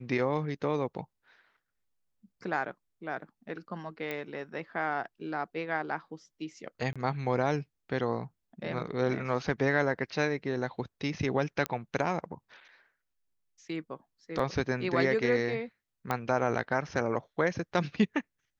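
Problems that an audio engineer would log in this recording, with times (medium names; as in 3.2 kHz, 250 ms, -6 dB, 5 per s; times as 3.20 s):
4.11 s: pop -21 dBFS
6.93–6.96 s: dropout 26 ms
11.66 s: pop -15 dBFS
14.39 s: dropout 4 ms
16.11 s: pop -16 dBFS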